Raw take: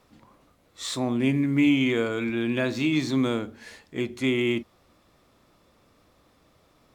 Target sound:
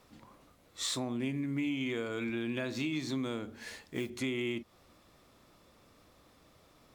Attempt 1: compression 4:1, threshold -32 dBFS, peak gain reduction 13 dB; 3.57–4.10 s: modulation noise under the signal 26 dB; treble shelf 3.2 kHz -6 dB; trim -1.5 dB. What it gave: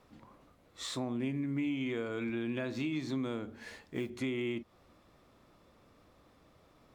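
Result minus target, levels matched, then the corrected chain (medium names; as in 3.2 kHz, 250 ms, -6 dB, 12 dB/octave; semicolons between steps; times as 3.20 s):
8 kHz band -7.0 dB
compression 4:1, threshold -32 dBFS, peak gain reduction 13 dB; 3.57–4.10 s: modulation noise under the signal 26 dB; treble shelf 3.2 kHz +3 dB; trim -1.5 dB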